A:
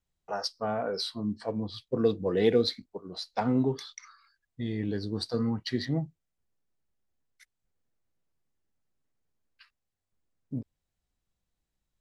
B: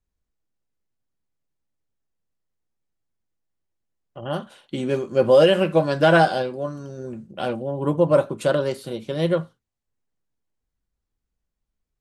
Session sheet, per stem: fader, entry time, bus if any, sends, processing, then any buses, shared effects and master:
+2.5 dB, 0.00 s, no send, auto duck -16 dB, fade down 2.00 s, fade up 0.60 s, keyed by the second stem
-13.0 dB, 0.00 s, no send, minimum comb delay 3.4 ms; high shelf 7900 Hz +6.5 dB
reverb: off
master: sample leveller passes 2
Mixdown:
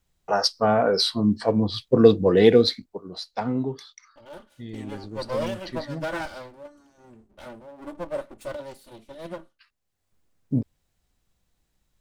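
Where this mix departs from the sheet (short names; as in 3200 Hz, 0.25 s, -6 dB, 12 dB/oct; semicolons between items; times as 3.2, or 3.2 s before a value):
stem A +2.5 dB -> +11.0 dB; master: missing sample leveller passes 2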